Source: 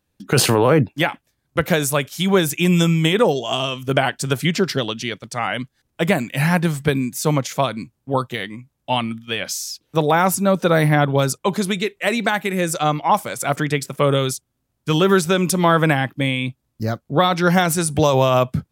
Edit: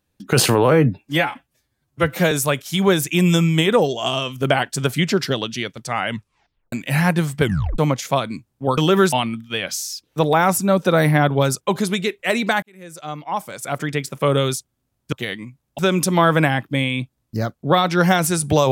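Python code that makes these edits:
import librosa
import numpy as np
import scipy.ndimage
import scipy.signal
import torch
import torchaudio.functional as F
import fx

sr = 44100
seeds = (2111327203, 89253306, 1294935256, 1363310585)

y = fx.edit(x, sr, fx.stretch_span(start_s=0.71, length_s=1.07, factor=1.5),
    fx.tape_stop(start_s=5.55, length_s=0.64),
    fx.tape_stop(start_s=6.88, length_s=0.37),
    fx.swap(start_s=8.24, length_s=0.66, other_s=14.9, other_length_s=0.35),
    fx.fade_in_span(start_s=12.4, length_s=1.79), tone=tone)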